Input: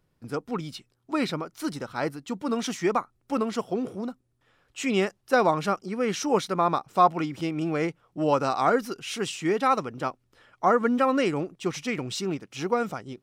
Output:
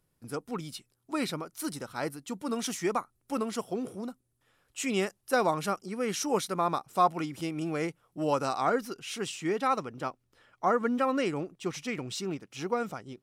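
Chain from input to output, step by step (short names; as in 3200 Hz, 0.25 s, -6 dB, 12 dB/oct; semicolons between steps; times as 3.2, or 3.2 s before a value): bell 11000 Hz +13.5 dB 1.1 oct, from 8.58 s +3.5 dB; gain -5 dB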